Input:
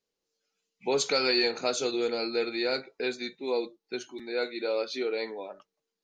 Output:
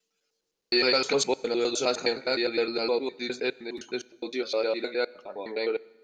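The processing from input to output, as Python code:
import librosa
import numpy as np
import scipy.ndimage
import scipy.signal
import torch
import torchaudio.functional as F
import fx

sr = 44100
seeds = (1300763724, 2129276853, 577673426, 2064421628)

y = fx.block_reorder(x, sr, ms=103.0, group=7)
y = fx.rev_fdn(y, sr, rt60_s=1.3, lf_ratio=1.3, hf_ratio=0.9, size_ms=65.0, drr_db=19.5)
y = F.gain(torch.from_numpy(y), 2.5).numpy()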